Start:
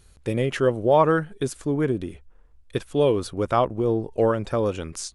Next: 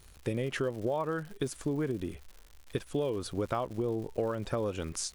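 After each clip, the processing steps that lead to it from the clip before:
downward compressor 10 to 1, threshold −26 dBFS, peak gain reduction 14 dB
surface crackle 190 per second −40 dBFS
level −2 dB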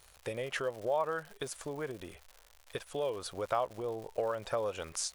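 low shelf with overshoot 420 Hz −10.5 dB, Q 1.5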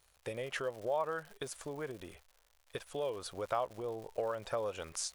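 noise gate −54 dBFS, range −7 dB
level −2.5 dB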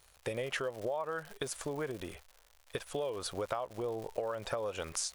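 downward compressor 6 to 1, threshold −38 dBFS, peak gain reduction 10 dB
level +6 dB

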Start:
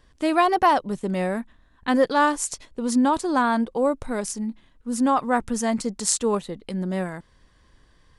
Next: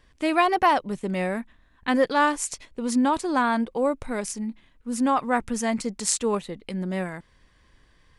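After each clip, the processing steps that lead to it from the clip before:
parametric band 2,300 Hz +6 dB 0.72 octaves
level −2 dB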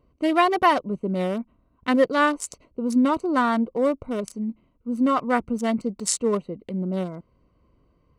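adaptive Wiener filter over 25 samples
notch comb filter 830 Hz
level +3 dB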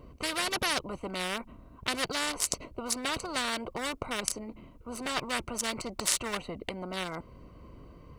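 every bin compressed towards the loudest bin 4 to 1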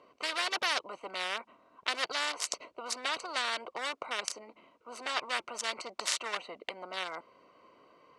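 band-pass filter 590–5,900 Hz

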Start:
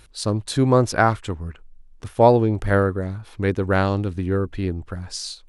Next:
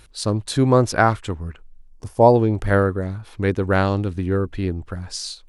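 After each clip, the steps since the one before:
gain on a spectral selection 0:01.89–0:02.35, 1,100–4,400 Hz −10 dB
level +1 dB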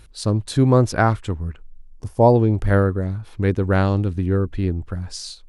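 low-shelf EQ 290 Hz +7 dB
level −3 dB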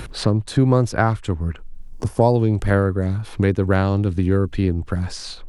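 multiband upward and downward compressor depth 70%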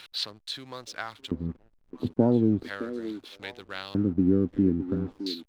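auto-filter band-pass square 0.38 Hz 260–3,700 Hz
echo through a band-pass that steps 614 ms, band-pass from 370 Hz, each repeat 1.4 octaves, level −9 dB
slack as between gear wheels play −48 dBFS
level +2 dB

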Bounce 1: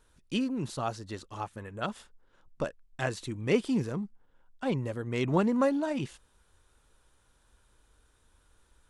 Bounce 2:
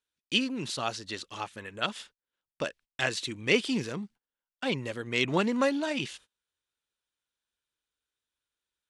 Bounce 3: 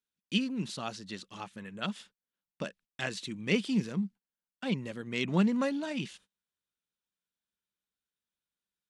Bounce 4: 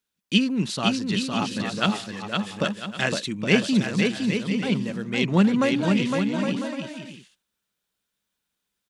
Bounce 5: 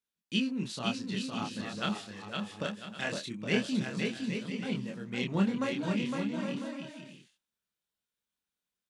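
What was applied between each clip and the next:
meter weighting curve D; noise gate −52 dBFS, range −26 dB
parametric band 190 Hz +14.5 dB 0.6 octaves; level −6.5 dB
speech leveller within 4 dB 2 s; on a send: bouncing-ball delay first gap 510 ms, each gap 0.6×, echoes 5; on the sum: level +8.5 dB
chorus effect 0.23 Hz, depth 6.5 ms; level −7 dB

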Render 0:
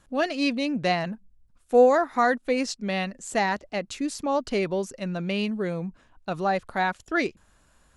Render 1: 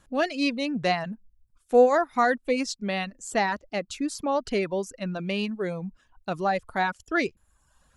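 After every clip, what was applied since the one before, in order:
reverb reduction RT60 0.73 s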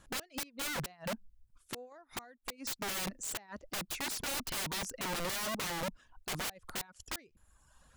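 gate with flip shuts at −15 dBFS, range −33 dB
wrap-around overflow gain 31.5 dB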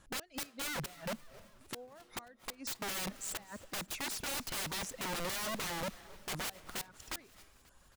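echo with shifted repeats 268 ms, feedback 64%, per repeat −140 Hz, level −21.5 dB
convolution reverb RT60 0.80 s, pre-delay 207 ms, DRR 18.5 dB
level −1.5 dB

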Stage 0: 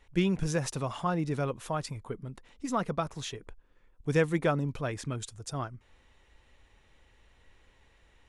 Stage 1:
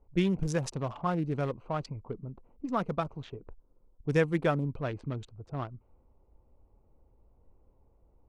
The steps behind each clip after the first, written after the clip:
adaptive Wiener filter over 25 samples
low-pass that shuts in the quiet parts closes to 940 Hz, open at −25.5 dBFS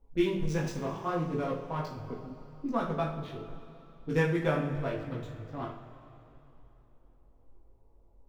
running median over 5 samples
multi-voice chorus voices 2, 0.75 Hz, delay 19 ms, depth 1.7 ms
coupled-rooms reverb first 0.43 s, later 3.2 s, from −15 dB, DRR −1 dB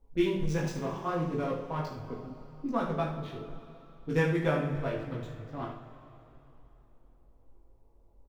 single-tap delay 72 ms −11.5 dB

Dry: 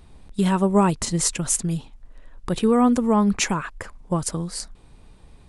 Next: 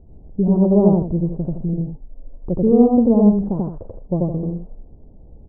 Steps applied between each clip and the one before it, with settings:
Butterworth low-pass 690 Hz 36 dB per octave
on a send: loudspeakers that aren't time-aligned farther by 30 metres 0 dB, 56 metres −9 dB
on the sum: level +2.5 dB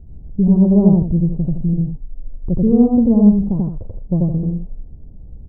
bass and treble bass +13 dB, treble +9 dB
level −5.5 dB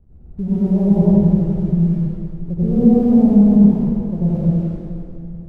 dead-zone distortion −45 dBFS
dense smooth reverb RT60 2.6 s, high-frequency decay 0.8×, pre-delay 85 ms, DRR −9 dB
level −9 dB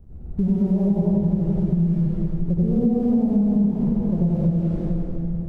downward compressor 6 to 1, threshold −23 dBFS, peak gain reduction 16 dB
level +5.5 dB

